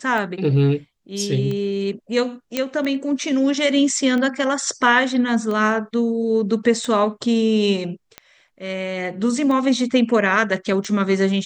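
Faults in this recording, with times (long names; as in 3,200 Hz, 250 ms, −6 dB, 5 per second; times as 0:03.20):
scratch tick 45 rpm −16 dBFS
0:02.57: click −6 dBFS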